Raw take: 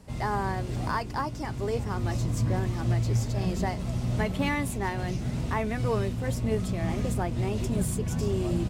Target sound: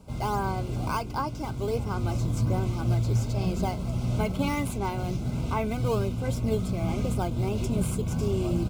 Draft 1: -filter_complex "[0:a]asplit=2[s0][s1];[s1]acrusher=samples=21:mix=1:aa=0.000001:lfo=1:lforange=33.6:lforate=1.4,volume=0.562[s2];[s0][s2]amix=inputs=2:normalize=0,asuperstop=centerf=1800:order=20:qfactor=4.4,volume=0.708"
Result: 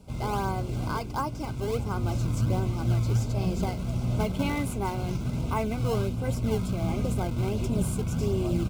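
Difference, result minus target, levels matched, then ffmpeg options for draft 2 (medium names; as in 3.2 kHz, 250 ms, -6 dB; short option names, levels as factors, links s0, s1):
decimation with a swept rate: distortion +7 dB
-filter_complex "[0:a]asplit=2[s0][s1];[s1]acrusher=samples=7:mix=1:aa=0.000001:lfo=1:lforange=11.2:lforate=1.4,volume=0.562[s2];[s0][s2]amix=inputs=2:normalize=0,asuperstop=centerf=1800:order=20:qfactor=4.4,volume=0.708"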